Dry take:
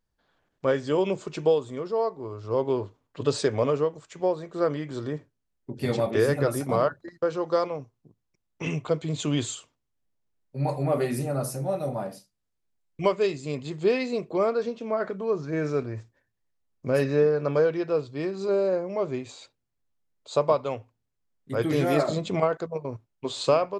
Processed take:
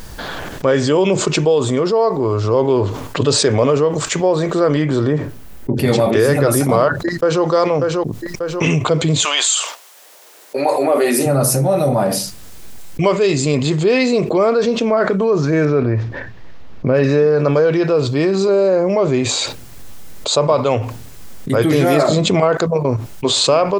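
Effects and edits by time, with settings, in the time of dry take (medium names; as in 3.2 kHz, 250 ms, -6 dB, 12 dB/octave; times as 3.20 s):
4.82–5.88 s: peaking EQ 6.7 kHz -7.5 dB 2.1 oct
7.02–7.44 s: echo throw 590 ms, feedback 20%, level -9.5 dB
9.23–11.25 s: high-pass 790 Hz -> 250 Hz 24 dB/octave
15.65–17.04 s: distance through air 250 m
whole clip: treble shelf 5.6 kHz +4 dB; level flattener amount 70%; trim +6 dB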